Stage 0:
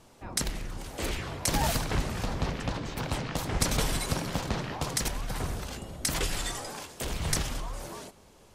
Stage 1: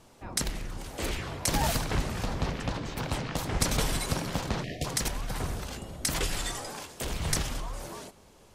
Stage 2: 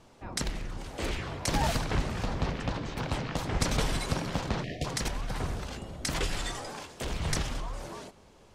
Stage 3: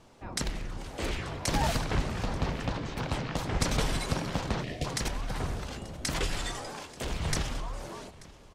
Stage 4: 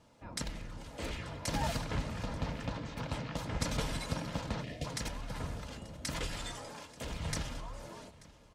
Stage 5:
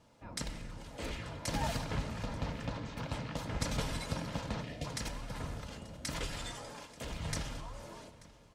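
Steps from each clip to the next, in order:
spectral delete 4.64–4.85, 740–1700 Hz
bell 14000 Hz -12 dB 1.1 oct
echo 0.885 s -21 dB
notch comb 380 Hz; gain -5 dB
reverb RT60 1.5 s, pre-delay 3 ms, DRR 12 dB; gain -1 dB

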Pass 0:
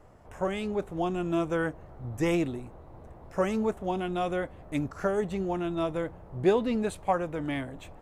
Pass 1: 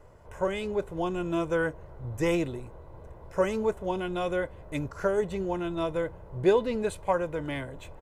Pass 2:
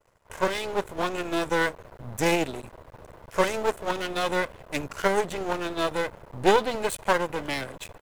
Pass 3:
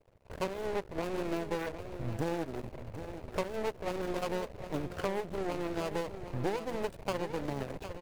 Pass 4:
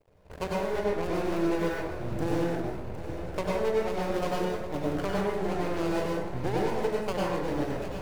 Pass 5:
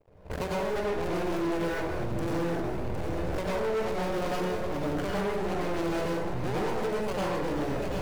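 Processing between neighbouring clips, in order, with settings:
comb 2 ms, depth 45%
expander -44 dBFS; half-wave rectifier; tilt +2 dB/oct; gain +8.5 dB
median filter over 41 samples; compressor 6:1, threshold -34 dBFS, peak gain reduction 17.5 dB; on a send: echo 0.76 s -11 dB; on the sum: gain +3.5 dB
plate-style reverb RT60 0.88 s, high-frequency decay 0.55×, pre-delay 85 ms, DRR -4 dB
recorder AGC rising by 28 dB/s; hard clip -28 dBFS, distortion -10 dB; mismatched tape noise reduction decoder only; gain +2 dB

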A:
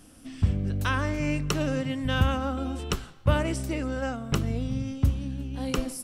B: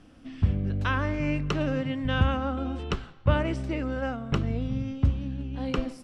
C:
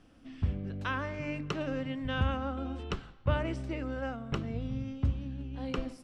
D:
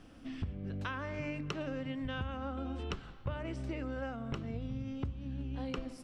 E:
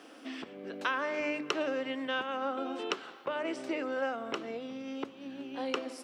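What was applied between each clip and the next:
LPF 3400 Hz 12 dB/oct
notches 50/100/150/200/250/300 Hz; gain -5.5 dB
compressor 6:1, threshold -40 dBFS, peak gain reduction 16 dB; gain +4.5 dB
HPF 320 Hz 24 dB/oct; gain +8.5 dB

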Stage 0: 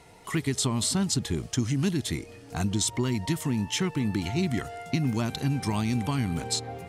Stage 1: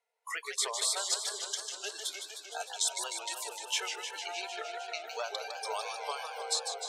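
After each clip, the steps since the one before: rippled Chebyshev high-pass 430 Hz, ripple 3 dB; spectral noise reduction 29 dB; warbling echo 0.153 s, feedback 77%, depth 188 cents, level -7 dB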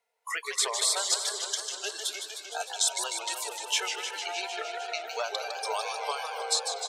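speakerphone echo 0.24 s, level -13 dB; gain +4.5 dB

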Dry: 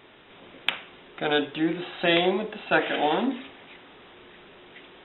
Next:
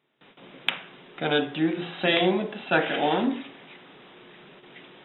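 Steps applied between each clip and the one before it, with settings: de-hum 56.58 Hz, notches 35; gate with hold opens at -42 dBFS; resonant low shelf 110 Hz -8.5 dB, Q 3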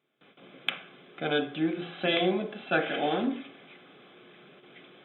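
notch comb 930 Hz; gain -3.5 dB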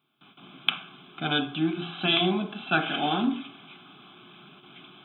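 fixed phaser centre 1900 Hz, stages 6; gain +7 dB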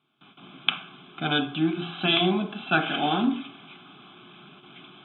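air absorption 58 m; gain +2 dB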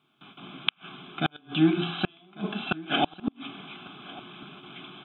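flipped gate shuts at -14 dBFS, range -38 dB; echo 1.148 s -20 dB; gain +3.5 dB

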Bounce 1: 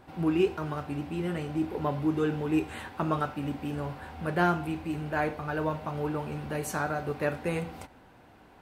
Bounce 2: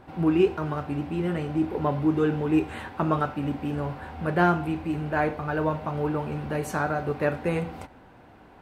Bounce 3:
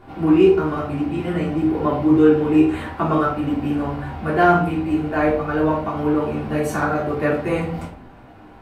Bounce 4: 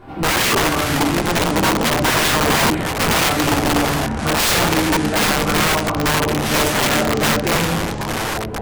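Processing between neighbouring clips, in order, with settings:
high shelf 3600 Hz -8.5 dB; gain +4.5 dB
shoebox room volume 300 m³, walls furnished, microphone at 3.3 m
wrapped overs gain 16 dB; echoes that change speed 0.243 s, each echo -6 st, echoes 3, each echo -6 dB; gain +4 dB

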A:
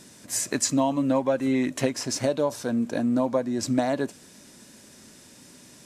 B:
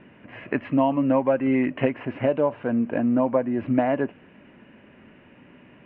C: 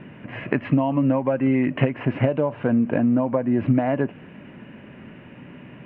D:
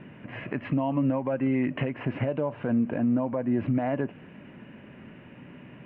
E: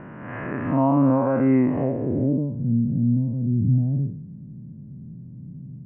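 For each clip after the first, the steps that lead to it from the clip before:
Chebyshev low-pass 2900 Hz, order 6; gain +3 dB
compressor 10:1, threshold -24 dBFS, peak gain reduction 9.5 dB; bell 140 Hz +7.5 dB 1 oct; gain +6 dB
limiter -13 dBFS, peak gain reduction 9 dB; gain -4.5 dB
time blur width 0.15 s; low-pass sweep 1300 Hz -> 150 Hz, 1.55–2.65; gain +8 dB

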